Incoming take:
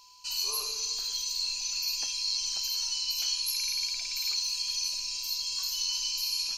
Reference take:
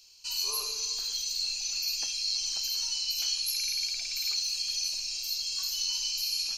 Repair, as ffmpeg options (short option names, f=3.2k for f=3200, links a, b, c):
-af "bandreject=f=1k:w=30"